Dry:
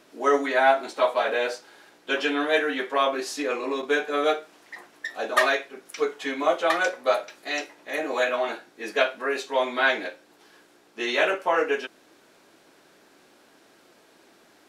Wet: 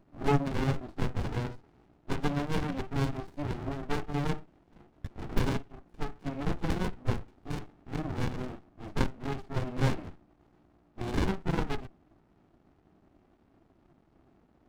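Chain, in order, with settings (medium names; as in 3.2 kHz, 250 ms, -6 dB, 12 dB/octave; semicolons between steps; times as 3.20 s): local Wiener filter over 25 samples; dynamic bell 870 Hz, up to -6 dB, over -38 dBFS, Q 1.6; sliding maximum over 65 samples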